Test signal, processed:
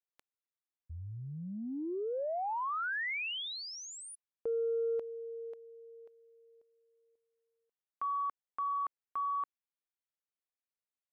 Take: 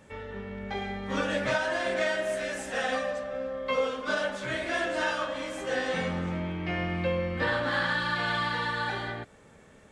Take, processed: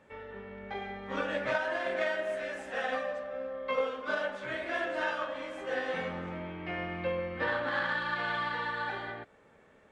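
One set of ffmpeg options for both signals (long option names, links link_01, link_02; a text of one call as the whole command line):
ffmpeg -i in.wav -af "aeval=exprs='0.188*(cos(1*acos(clip(val(0)/0.188,-1,1)))-cos(1*PI/2))+0.0211*(cos(3*acos(clip(val(0)/0.188,-1,1)))-cos(3*PI/2))':channel_layout=same,bass=frequency=250:gain=-8,treble=frequency=4000:gain=-13" out.wav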